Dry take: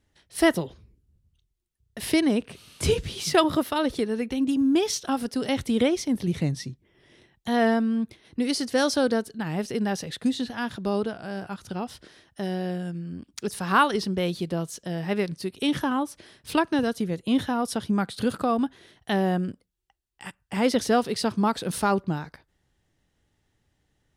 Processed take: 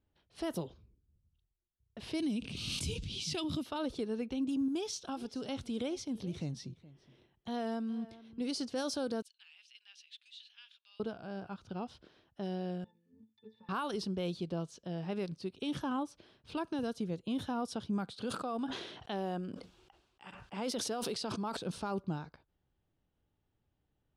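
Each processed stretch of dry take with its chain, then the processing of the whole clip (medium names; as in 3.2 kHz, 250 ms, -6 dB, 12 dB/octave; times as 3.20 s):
2.20–3.66 s: high-order bell 810 Hz -13 dB 2.5 oct + swell ahead of each attack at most 32 dB/s
4.68–8.41 s: treble shelf 6.3 kHz +10 dB + compression 1.5:1, threshold -33 dBFS + delay 419 ms -18.5 dB
9.22–11.00 s: ladder high-pass 2.3 kHz, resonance 50% + treble shelf 4.3 kHz +7 dB
12.84–13.69 s: frequency weighting D + compression 4:1, threshold -29 dBFS + pitch-class resonator A, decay 0.16 s
18.14–21.57 s: high-pass 320 Hz 6 dB/octave + decay stretcher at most 43 dB/s
whole clip: level-controlled noise filter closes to 2.8 kHz, open at -17.5 dBFS; peaking EQ 1.9 kHz -10.5 dB 0.39 oct; peak limiter -19 dBFS; trim -8.5 dB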